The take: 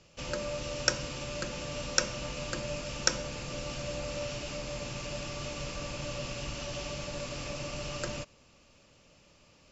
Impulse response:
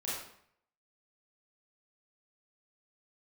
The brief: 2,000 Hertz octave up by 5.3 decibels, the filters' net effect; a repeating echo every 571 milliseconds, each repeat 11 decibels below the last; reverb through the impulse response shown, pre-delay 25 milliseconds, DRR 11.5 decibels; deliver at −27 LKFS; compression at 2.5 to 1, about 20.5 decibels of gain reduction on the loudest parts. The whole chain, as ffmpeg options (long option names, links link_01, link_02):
-filter_complex "[0:a]equalizer=frequency=2000:width_type=o:gain=7.5,acompressor=threshold=-54dB:ratio=2.5,aecho=1:1:571|1142|1713:0.282|0.0789|0.0221,asplit=2[link_01][link_02];[1:a]atrim=start_sample=2205,adelay=25[link_03];[link_02][link_03]afir=irnorm=-1:irlink=0,volume=-15dB[link_04];[link_01][link_04]amix=inputs=2:normalize=0,volume=21.5dB"